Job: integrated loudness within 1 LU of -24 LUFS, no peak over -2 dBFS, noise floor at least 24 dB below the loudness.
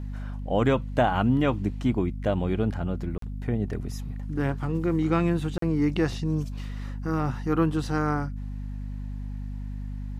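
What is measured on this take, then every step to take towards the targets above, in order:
dropouts 2; longest dropout 43 ms; hum 50 Hz; harmonics up to 250 Hz; hum level -31 dBFS; loudness -27.5 LUFS; peak -10.5 dBFS; loudness target -24.0 LUFS
-> interpolate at 3.18/5.58, 43 ms; notches 50/100/150/200/250 Hz; gain +3.5 dB

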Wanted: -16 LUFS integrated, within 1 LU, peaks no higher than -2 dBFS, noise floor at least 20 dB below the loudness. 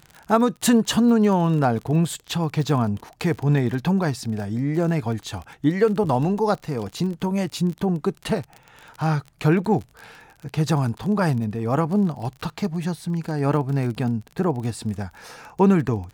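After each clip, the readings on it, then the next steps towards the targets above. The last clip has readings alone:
ticks 32/s; loudness -23.0 LUFS; peak -6.5 dBFS; loudness target -16.0 LUFS
-> de-click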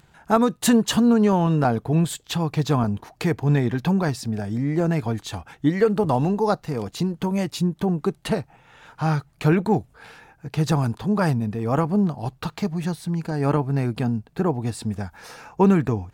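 ticks 0.37/s; loudness -23.0 LUFS; peak -6.5 dBFS; loudness target -16.0 LUFS
-> gain +7 dB; limiter -2 dBFS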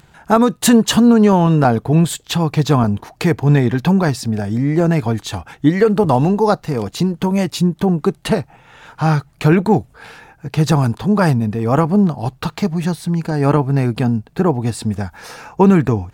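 loudness -16.0 LUFS; peak -2.0 dBFS; noise floor -51 dBFS

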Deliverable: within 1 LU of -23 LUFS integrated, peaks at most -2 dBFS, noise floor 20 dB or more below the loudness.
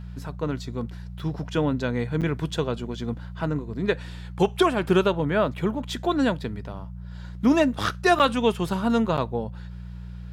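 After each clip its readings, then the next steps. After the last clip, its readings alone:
dropouts 3; longest dropout 7.6 ms; hum 60 Hz; harmonics up to 180 Hz; hum level -35 dBFS; loudness -25.0 LUFS; peak -8.5 dBFS; loudness target -23.0 LUFS
-> interpolate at 2.21/8.19/9.17, 7.6 ms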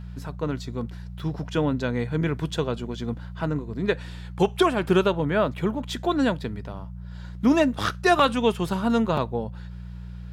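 dropouts 0; hum 60 Hz; harmonics up to 180 Hz; hum level -35 dBFS
-> de-hum 60 Hz, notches 3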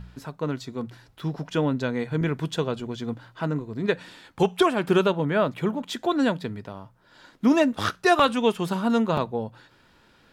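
hum none; loudness -25.0 LUFS; peak -8.5 dBFS; loudness target -23.0 LUFS
-> gain +2 dB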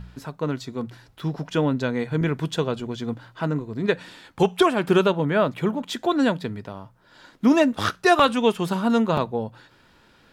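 loudness -23.0 LUFS; peak -6.5 dBFS; noise floor -57 dBFS

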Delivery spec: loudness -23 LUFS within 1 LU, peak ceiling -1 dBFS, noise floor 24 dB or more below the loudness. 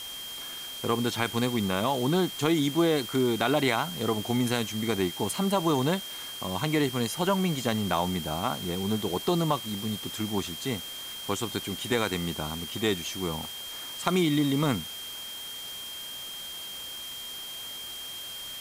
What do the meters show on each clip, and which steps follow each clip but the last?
steady tone 3200 Hz; tone level -38 dBFS; noise floor -39 dBFS; noise floor target -53 dBFS; loudness -29.0 LUFS; peak -9.0 dBFS; loudness target -23.0 LUFS
-> notch 3200 Hz, Q 30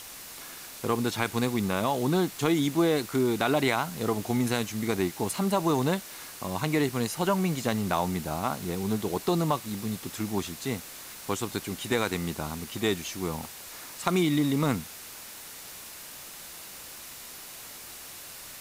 steady tone none; noise floor -44 dBFS; noise floor target -53 dBFS
-> denoiser 9 dB, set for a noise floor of -44 dBFS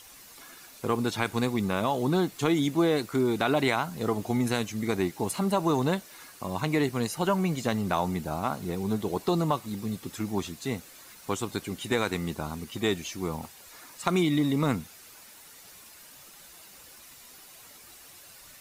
noise floor -51 dBFS; noise floor target -53 dBFS
-> denoiser 6 dB, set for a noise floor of -51 dBFS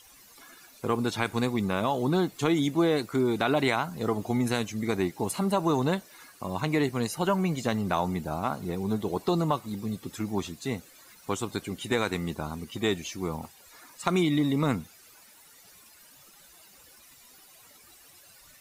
noise floor -55 dBFS; loudness -28.5 LUFS; peak -9.5 dBFS; loudness target -23.0 LUFS
-> gain +5.5 dB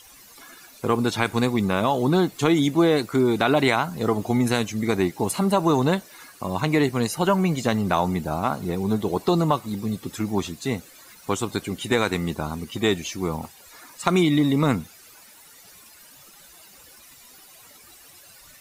loudness -23.0 LUFS; peak -4.0 dBFS; noise floor -49 dBFS

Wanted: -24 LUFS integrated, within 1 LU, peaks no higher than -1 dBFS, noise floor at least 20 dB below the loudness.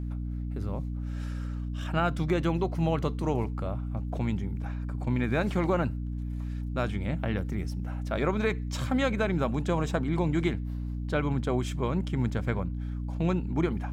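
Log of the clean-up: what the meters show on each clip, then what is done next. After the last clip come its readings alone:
hum 60 Hz; harmonics up to 300 Hz; hum level -31 dBFS; loudness -30.0 LUFS; peak -13.5 dBFS; loudness target -24.0 LUFS
-> notches 60/120/180/240/300 Hz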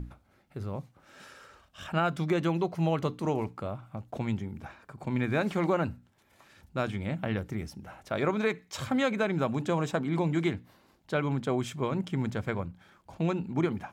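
hum none; loudness -31.0 LUFS; peak -15.0 dBFS; loudness target -24.0 LUFS
-> gain +7 dB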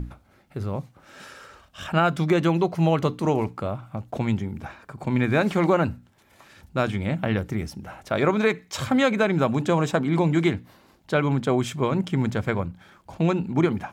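loudness -24.0 LUFS; peak -8.0 dBFS; noise floor -59 dBFS

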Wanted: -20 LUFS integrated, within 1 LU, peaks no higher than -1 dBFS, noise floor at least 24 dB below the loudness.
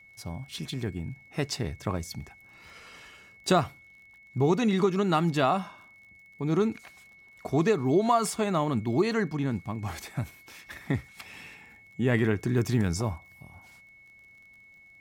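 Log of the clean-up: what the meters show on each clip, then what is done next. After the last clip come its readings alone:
ticks 34/s; steady tone 2200 Hz; tone level -52 dBFS; loudness -28.0 LUFS; peak -12.0 dBFS; loudness target -20.0 LUFS
-> de-click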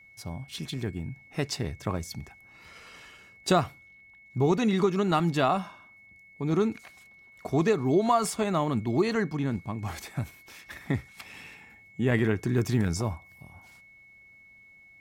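ticks 0.47/s; steady tone 2200 Hz; tone level -52 dBFS
-> notch 2200 Hz, Q 30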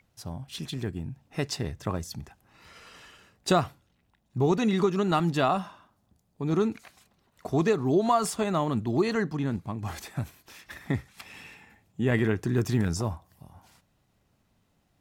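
steady tone none; loudness -28.0 LUFS; peak -12.0 dBFS; loudness target -20.0 LUFS
-> gain +8 dB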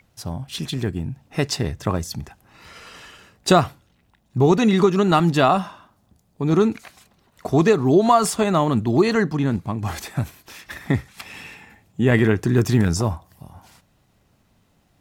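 loudness -20.0 LUFS; peak -4.0 dBFS; noise floor -63 dBFS

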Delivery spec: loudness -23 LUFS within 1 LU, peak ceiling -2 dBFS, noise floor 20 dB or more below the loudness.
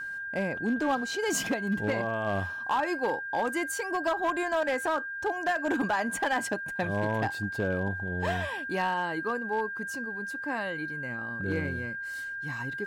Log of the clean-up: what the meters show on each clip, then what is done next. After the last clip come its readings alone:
clipped 1.2%; flat tops at -21.5 dBFS; steady tone 1600 Hz; tone level -34 dBFS; loudness -30.5 LUFS; peak -21.5 dBFS; loudness target -23.0 LUFS
-> clip repair -21.5 dBFS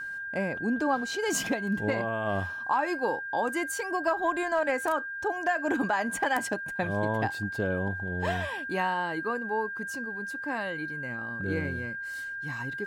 clipped 0.0%; steady tone 1600 Hz; tone level -34 dBFS
-> notch 1600 Hz, Q 30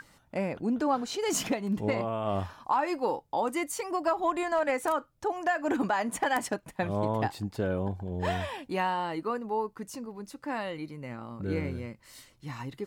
steady tone none; loudness -31.0 LUFS; peak -13.0 dBFS; loudness target -23.0 LUFS
-> gain +8 dB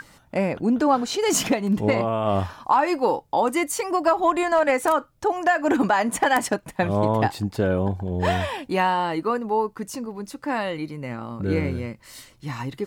loudness -23.0 LUFS; peak -5.0 dBFS; noise floor -56 dBFS

